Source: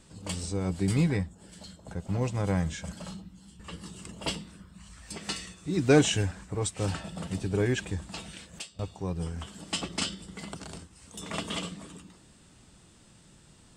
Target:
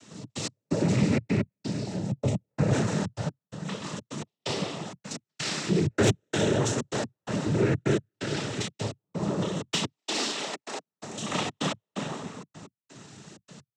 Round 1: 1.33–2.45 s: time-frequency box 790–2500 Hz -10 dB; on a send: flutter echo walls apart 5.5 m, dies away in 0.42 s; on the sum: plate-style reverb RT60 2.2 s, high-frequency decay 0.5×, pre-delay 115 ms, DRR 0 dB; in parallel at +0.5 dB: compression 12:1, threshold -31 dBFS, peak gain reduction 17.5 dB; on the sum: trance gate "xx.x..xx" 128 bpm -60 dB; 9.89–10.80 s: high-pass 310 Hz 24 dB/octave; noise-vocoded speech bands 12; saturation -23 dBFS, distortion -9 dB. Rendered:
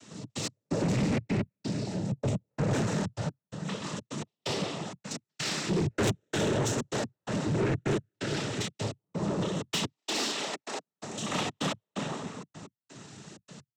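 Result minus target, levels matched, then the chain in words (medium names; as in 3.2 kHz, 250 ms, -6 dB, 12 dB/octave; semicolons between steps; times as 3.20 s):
saturation: distortion +10 dB
1.33–2.45 s: time-frequency box 790–2500 Hz -10 dB; on a send: flutter echo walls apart 5.5 m, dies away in 0.42 s; on the sum: plate-style reverb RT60 2.2 s, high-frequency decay 0.5×, pre-delay 115 ms, DRR 0 dB; in parallel at +0.5 dB: compression 12:1, threshold -31 dBFS, peak gain reduction 17.5 dB; on the sum: trance gate "xx.x..xx" 128 bpm -60 dB; 9.89–10.80 s: high-pass 310 Hz 24 dB/octave; noise-vocoded speech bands 12; saturation -13.5 dBFS, distortion -20 dB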